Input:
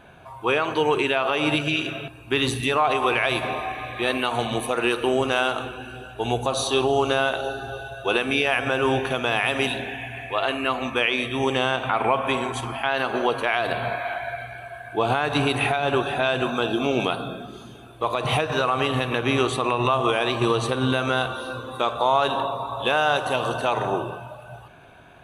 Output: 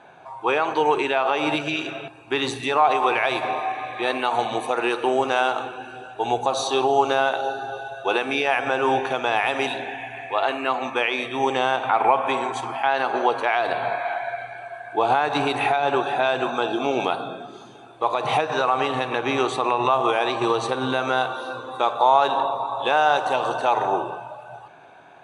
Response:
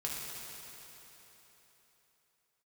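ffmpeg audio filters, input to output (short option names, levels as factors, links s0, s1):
-af "highpass=200,equalizer=f=220:t=q:w=4:g=-6,equalizer=f=830:t=q:w=4:g=8,equalizer=f=3000:t=q:w=4:g=-5,lowpass=f=8300:w=0.5412,lowpass=f=8300:w=1.3066"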